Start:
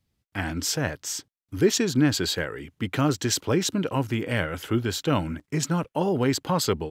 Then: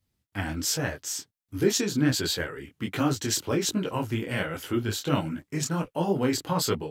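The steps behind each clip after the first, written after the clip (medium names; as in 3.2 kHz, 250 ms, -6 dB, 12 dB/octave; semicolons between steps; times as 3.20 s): treble shelf 8.6 kHz +6 dB; detune thickener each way 46 cents; trim +1 dB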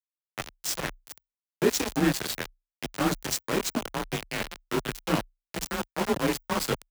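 small samples zeroed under -23 dBFS; frequency shift +30 Hz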